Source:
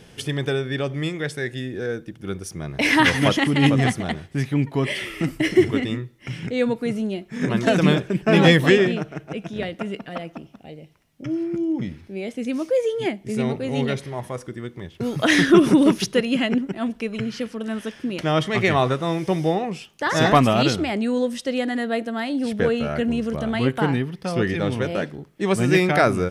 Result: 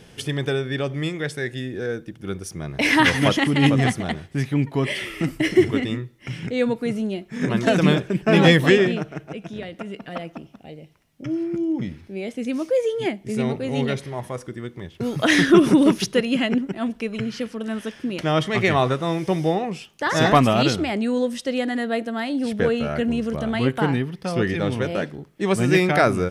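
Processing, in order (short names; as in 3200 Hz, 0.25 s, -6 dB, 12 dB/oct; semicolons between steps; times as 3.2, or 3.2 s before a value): 9.19–10.02 compressor, threshold -29 dBFS, peak gain reduction 7 dB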